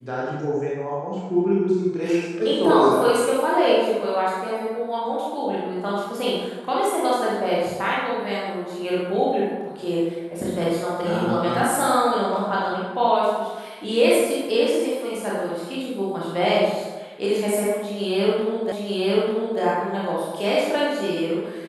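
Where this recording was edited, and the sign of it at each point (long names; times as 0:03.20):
0:18.72: the same again, the last 0.89 s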